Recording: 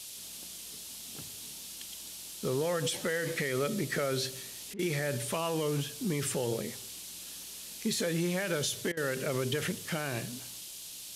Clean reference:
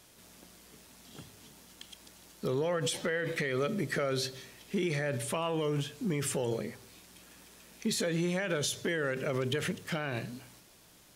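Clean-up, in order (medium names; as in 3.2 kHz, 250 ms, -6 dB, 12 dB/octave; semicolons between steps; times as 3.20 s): interpolate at 4.74/8.92 s, 49 ms; noise print and reduce 12 dB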